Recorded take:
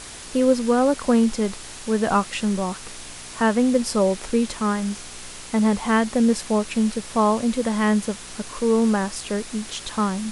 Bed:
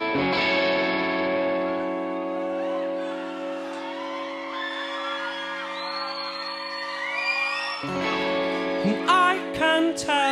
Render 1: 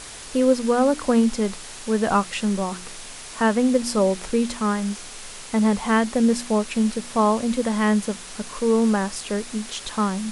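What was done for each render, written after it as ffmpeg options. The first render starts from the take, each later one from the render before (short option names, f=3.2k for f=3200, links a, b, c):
-af "bandreject=f=60:t=h:w=4,bandreject=f=120:t=h:w=4,bandreject=f=180:t=h:w=4,bandreject=f=240:t=h:w=4,bandreject=f=300:t=h:w=4,bandreject=f=360:t=h:w=4"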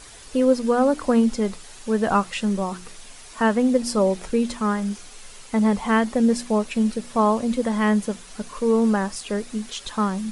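-af "afftdn=nr=8:nf=-38"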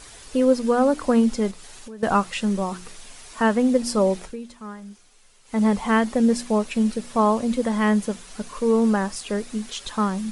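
-filter_complex "[0:a]asettb=1/sr,asplit=3[a][b][c];[a]atrim=end=1.514[d];[b]atrim=start=1.51:end=2.03,asetpts=PTS-STARTPTS,afade=t=in:d=0.004:c=qsin,afade=t=out:st=0.516:d=0.004:c=qsin,acompressor=threshold=-37dB:ratio=5:attack=3.2:release=140:knee=1:detection=peak[e];[c]atrim=start=2.026[f];[d][e]acrossfade=d=0.004:c1=hsin:c2=qsin[g];[g][f]acrossfade=d=0.004:c1=qsin:c2=hsin,asplit=3[h][i][j];[h]atrim=end=4.36,asetpts=PTS-STARTPTS,afade=t=out:st=4.18:d=0.18:silence=0.199526[k];[i]atrim=start=4.36:end=5.44,asetpts=PTS-STARTPTS,volume=-14dB[l];[j]atrim=start=5.44,asetpts=PTS-STARTPTS,afade=t=in:d=0.18:silence=0.199526[m];[k][l][m]concat=n=3:v=0:a=1"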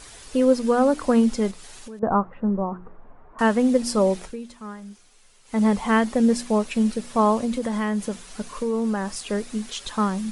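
-filter_complex "[0:a]asettb=1/sr,asplit=3[a][b][c];[a]atrim=end=1.994[d];[b]atrim=start=1.99:end=3.39,asetpts=PTS-STARTPTS,afade=t=in:d=0.004:c=qsin,afade=t=out:st=1.396:d=0.004:c=qsin,lowpass=f=1.2k:w=0.5412,lowpass=f=1.2k:w=1.3066[e];[c]atrim=start=3.386[f];[d][e]acrossfade=d=0.004:c1=hsin:c2=qsin[g];[g][f]acrossfade=d=0.004:c1=qsin:c2=hsin,asettb=1/sr,asplit=3[h][i][j];[h]atrim=end=7.454[k];[i]atrim=start=7.45:end=9.15,asetpts=PTS-STARTPTS,afade=t=in:d=0.004:c=qsin,afade=t=out:st=1.696:d=0.004:c=qsin,acompressor=threshold=-21dB:ratio=4:attack=3.2:release=140:knee=1:detection=peak[l];[j]atrim=start=9.146[m];[k][l]acrossfade=d=0.004:c1=hsin:c2=qsin[n];[n][m]acrossfade=d=0.004:c1=qsin:c2=hsin"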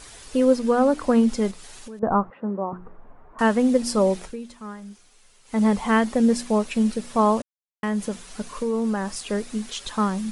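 -filter_complex "[0:a]asettb=1/sr,asplit=3[a][b][c];[a]atrim=end=0.564[d];[b]atrim=start=0.56:end=1.29,asetpts=PTS-STARTPTS,afade=t=in:d=0.004:c=qsin,afade=t=out:st=0.726:d=0.004:c=qsin,highshelf=f=4.9k:g=-4[e];[c]atrim=start=1.286[f];[d][e]acrossfade=d=0.004:c1=hsin:c2=qsin[g];[g][f]acrossfade=d=0.004:c1=qsin:c2=hsin,asettb=1/sr,asplit=3[h][i][j];[h]atrim=end=2.304[k];[i]atrim=start=2.3:end=2.73,asetpts=PTS-STARTPTS,afade=t=in:d=0.004:c=qsin,afade=t=out:st=0.426:d=0.004:c=qsin,highpass=260,lowpass=6.6k[l];[j]atrim=start=2.726[m];[k][l]acrossfade=d=0.004:c1=hsin:c2=qsin[n];[n][m]acrossfade=d=0.004:c1=qsin:c2=hsin,asplit=3[o][p][q];[o]atrim=end=7.42,asetpts=PTS-STARTPTS,afade=t=out:st=7.416:d=0.004:c=hsin[r];[p]atrim=start=7.42:end=7.83,asetpts=PTS-STARTPTS,volume=0[s];[q]atrim=start=7.83,asetpts=PTS-STARTPTS,afade=t=in:d=0.004:c=hsin[t];[r][s][t]concat=n=3:v=0:a=1"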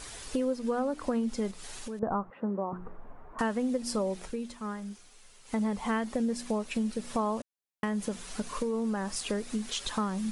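-af "acompressor=threshold=-29dB:ratio=4"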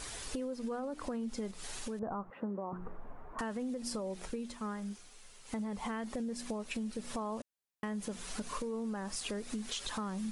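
-af "alimiter=level_in=0.5dB:limit=-24dB:level=0:latency=1:release=12,volume=-0.5dB,acompressor=threshold=-35dB:ratio=6"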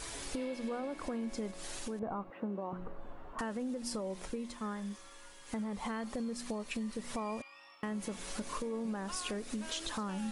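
-filter_complex "[1:a]volume=-28.5dB[a];[0:a][a]amix=inputs=2:normalize=0"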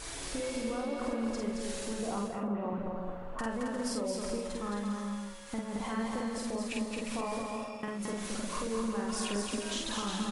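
-filter_complex "[0:a]asplit=2[a][b];[b]adelay=49,volume=-2dB[c];[a][c]amix=inputs=2:normalize=0,aecho=1:1:220|352|431.2|478.7|507.2:0.631|0.398|0.251|0.158|0.1"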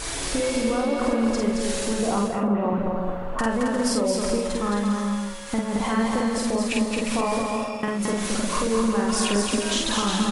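-af "volume=11.5dB"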